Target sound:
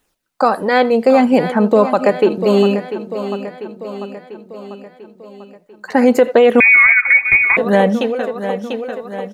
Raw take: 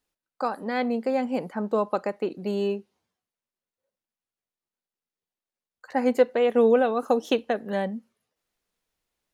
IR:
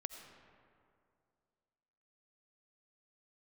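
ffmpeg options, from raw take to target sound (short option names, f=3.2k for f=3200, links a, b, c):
-filter_complex "[0:a]asplit=2[a][b];[1:a]atrim=start_sample=2205,afade=t=out:st=0.14:d=0.01,atrim=end_sample=6615[c];[b][c]afir=irnorm=-1:irlink=0,volume=1.5dB[d];[a][d]amix=inputs=2:normalize=0,flanger=delay=0.1:depth=2.1:regen=-53:speed=0.64:shape=sinusoidal,aecho=1:1:694|1388|2082|2776|3470|4164:0.251|0.143|0.0816|0.0465|0.0265|0.0151,asettb=1/sr,asplit=3[e][f][g];[e]atrim=end=6.604[h];[f]atrim=start=6.6:end=7.57,asetpts=PTS-STARTPTS,afade=t=in:d=0.004:c=qsin,afade=t=out:st=0.966:d=0.004:c=qsin,lowpass=f=2.3k:t=q:w=0.5098,lowpass=f=2.3k:t=q:w=0.6013,lowpass=f=2.3k:t=q:w=0.9,lowpass=f=2.3k:t=q:w=2.563,afreqshift=-2700[i];[g]atrim=start=7.566[j];[h][i]acrossfade=d=0.004:c1=hsin:c2=qsin[k];[k][j]acrossfade=d=0.004:c1=qsin:c2=hsin,alimiter=level_in=15dB:limit=-1dB:release=50:level=0:latency=1,volume=-1dB"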